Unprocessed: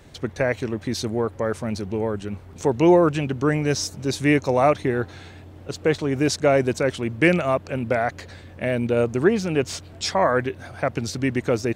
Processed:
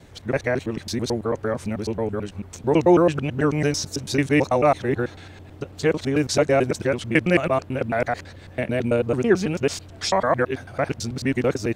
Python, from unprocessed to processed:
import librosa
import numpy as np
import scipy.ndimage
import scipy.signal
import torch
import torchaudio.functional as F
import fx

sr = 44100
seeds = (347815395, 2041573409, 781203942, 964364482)

y = fx.local_reverse(x, sr, ms=110.0)